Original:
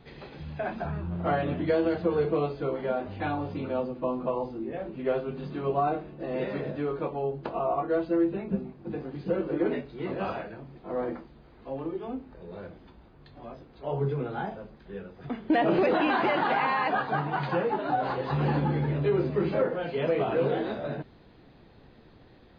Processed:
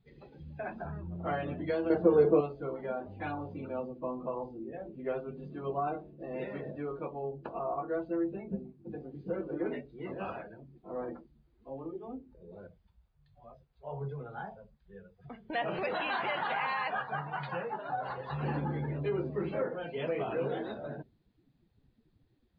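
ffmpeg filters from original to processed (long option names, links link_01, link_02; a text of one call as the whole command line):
ffmpeg -i in.wav -filter_complex "[0:a]asettb=1/sr,asplit=3[link_01][link_02][link_03];[link_01]atrim=end=1.904[link_04];[link_02]atrim=start=1.9:end=2.41,asetpts=PTS-STARTPTS,afade=type=in:duration=0.004:curve=qsin,afade=type=out:start_time=0.506:duration=0.004:curve=qsin,equalizer=frequency=390:width=0.48:gain=10.5[link_05];[link_03]atrim=start=2.406[link_06];[link_04][link_05]acrossfade=duration=0.004:curve1=hsin:curve2=qsin[link_07];[link_07][link_06]acrossfade=duration=0.004:curve1=qsin:curve2=hsin,asettb=1/sr,asplit=3[link_08][link_09][link_10];[link_08]atrim=end=12.674[link_11];[link_09]atrim=start=12.67:end=18.43,asetpts=PTS-STARTPTS,afade=type=in:duration=0.004:curve=qsin,afade=type=out:start_time=5.756:duration=0.004:curve=qsin,equalizer=frequency=300:width_type=o:width=0.82:gain=-12[link_12];[link_10]atrim=start=18.426[link_13];[link_11][link_12]acrossfade=duration=0.004:curve1=hsin:curve2=qsin[link_14];[link_14][link_13]acrossfade=duration=0.004:curve1=qsin:curve2=hsin,afftdn=noise_reduction=19:noise_floor=-42,highshelf=frequency=2900:gain=10.5,volume=-7.5dB" out.wav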